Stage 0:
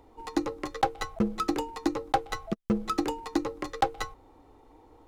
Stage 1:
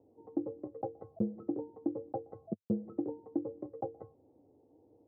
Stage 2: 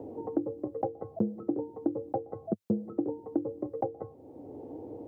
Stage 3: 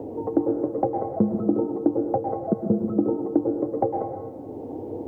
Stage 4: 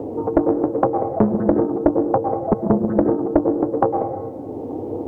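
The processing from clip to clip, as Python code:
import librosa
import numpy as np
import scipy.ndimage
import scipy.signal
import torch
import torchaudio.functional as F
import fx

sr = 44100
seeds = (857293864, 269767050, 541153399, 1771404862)

y1 = scipy.signal.sosfilt(scipy.signal.cheby1(3, 1.0, [100.0, 610.0], 'bandpass', fs=sr, output='sos'), x)
y1 = y1 * librosa.db_to_amplitude(-5.5)
y2 = fx.band_squash(y1, sr, depth_pct=70)
y2 = y2 * librosa.db_to_amplitude(5.5)
y3 = fx.rev_plate(y2, sr, seeds[0], rt60_s=1.2, hf_ratio=1.0, predelay_ms=95, drr_db=3.0)
y3 = y3 * librosa.db_to_amplitude(8.0)
y4 = fx.doppler_dist(y3, sr, depth_ms=0.97)
y4 = y4 * librosa.db_to_amplitude(6.0)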